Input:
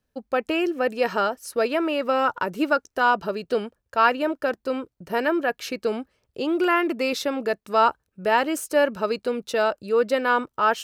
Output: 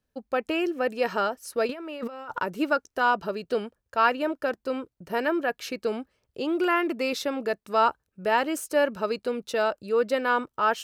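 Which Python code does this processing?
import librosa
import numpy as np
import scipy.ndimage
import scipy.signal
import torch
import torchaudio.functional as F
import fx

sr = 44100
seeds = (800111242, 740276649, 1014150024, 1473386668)

y = fx.over_compress(x, sr, threshold_db=-33.0, ratio=-1.0, at=(1.69, 2.4))
y = F.gain(torch.from_numpy(y), -3.0).numpy()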